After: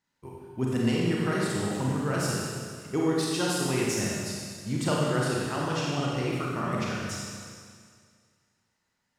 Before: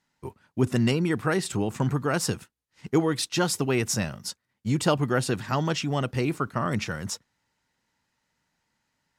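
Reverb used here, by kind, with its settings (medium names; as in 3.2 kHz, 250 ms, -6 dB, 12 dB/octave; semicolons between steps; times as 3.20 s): Schroeder reverb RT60 2 s, combs from 31 ms, DRR -4.5 dB; trim -7.5 dB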